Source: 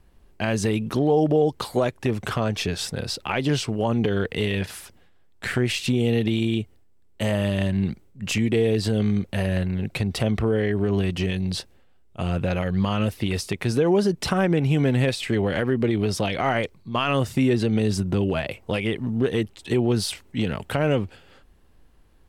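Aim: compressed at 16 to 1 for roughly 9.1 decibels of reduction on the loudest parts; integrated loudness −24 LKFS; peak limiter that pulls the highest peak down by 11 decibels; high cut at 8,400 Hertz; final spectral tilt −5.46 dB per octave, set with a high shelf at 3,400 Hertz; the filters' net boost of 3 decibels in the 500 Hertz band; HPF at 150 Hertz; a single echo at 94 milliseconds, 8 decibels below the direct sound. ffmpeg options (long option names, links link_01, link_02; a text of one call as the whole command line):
ffmpeg -i in.wav -af "highpass=150,lowpass=8400,equalizer=frequency=500:width_type=o:gain=4,highshelf=frequency=3400:gain=-9,acompressor=threshold=-22dB:ratio=16,alimiter=limit=-20.5dB:level=0:latency=1,aecho=1:1:94:0.398,volume=6dB" out.wav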